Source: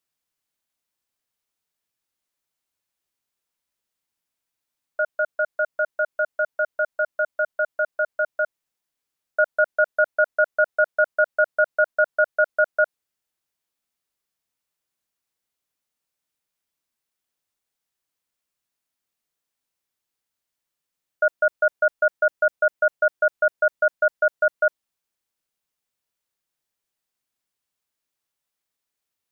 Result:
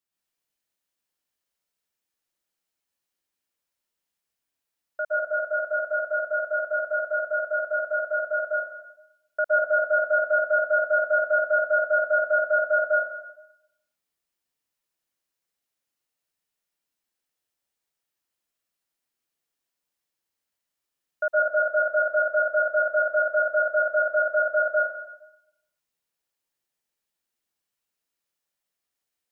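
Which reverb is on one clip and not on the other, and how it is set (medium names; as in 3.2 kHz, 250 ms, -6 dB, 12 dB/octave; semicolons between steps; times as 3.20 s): plate-style reverb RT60 0.86 s, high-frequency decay 0.95×, pre-delay 105 ms, DRR -4.5 dB; trim -6.5 dB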